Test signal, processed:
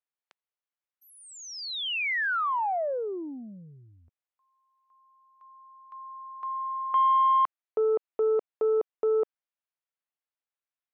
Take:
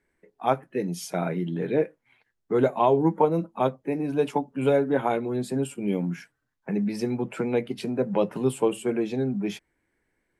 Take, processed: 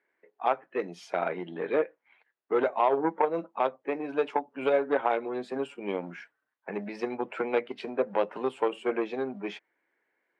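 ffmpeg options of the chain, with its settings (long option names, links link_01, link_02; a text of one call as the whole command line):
ffmpeg -i in.wav -af "alimiter=limit=-15.5dB:level=0:latency=1:release=172,aeval=exprs='0.168*(cos(1*acos(clip(val(0)/0.168,-1,1)))-cos(1*PI/2))+0.00376*(cos(2*acos(clip(val(0)/0.168,-1,1)))-cos(2*PI/2))+0.0188*(cos(3*acos(clip(val(0)/0.168,-1,1)))-cos(3*PI/2))':channel_layout=same,highpass=510,lowpass=2700,volume=5dB" out.wav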